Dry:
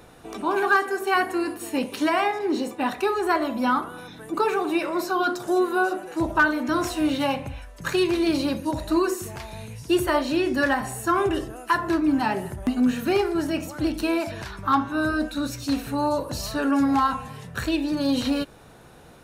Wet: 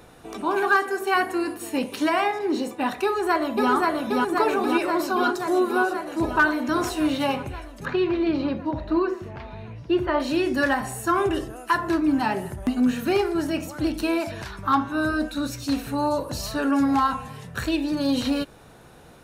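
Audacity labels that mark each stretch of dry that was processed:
3.040000	3.710000	delay throw 530 ms, feedback 75%, level −1 dB
7.850000	10.200000	high-frequency loss of the air 320 metres

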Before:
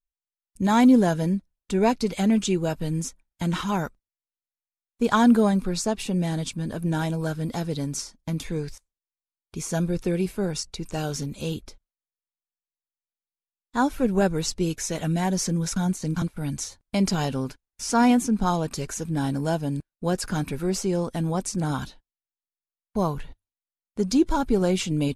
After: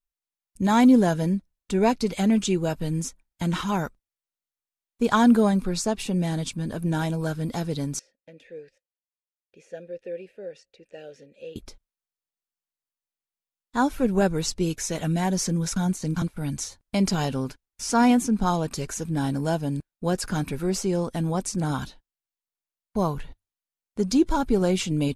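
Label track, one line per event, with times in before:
7.990000	11.560000	formant filter e

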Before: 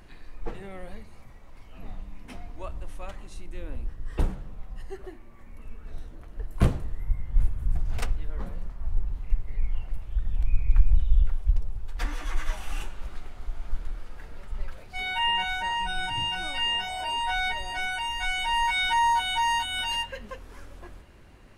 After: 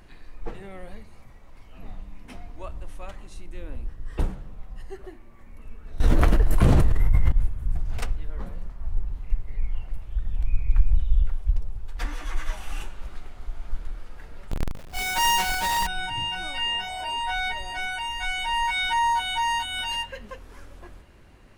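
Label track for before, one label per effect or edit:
6.000000	7.320000	envelope flattener amount 100%
14.510000	15.870000	each half-wave held at its own peak

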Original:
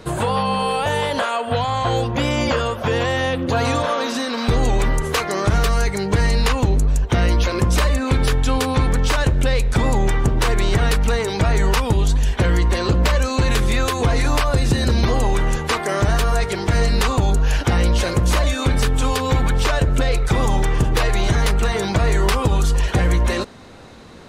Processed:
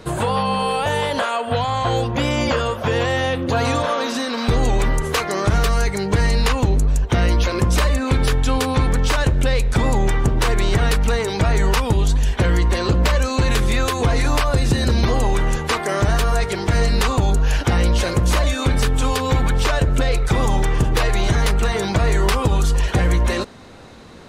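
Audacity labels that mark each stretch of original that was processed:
2.650000	3.480000	double-tracking delay 32 ms −13 dB

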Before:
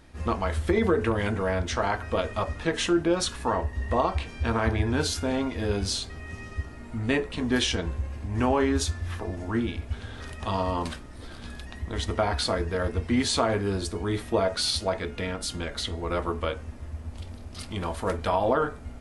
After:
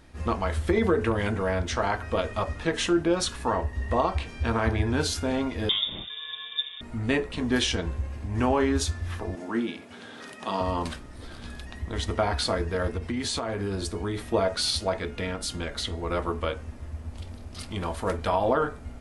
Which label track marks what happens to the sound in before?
5.690000	6.810000	voice inversion scrambler carrier 3,600 Hz
9.350000	10.610000	high-pass filter 180 Hz 24 dB per octave
12.930000	14.260000	downward compressor 10 to 1, threshold −25 dBFS

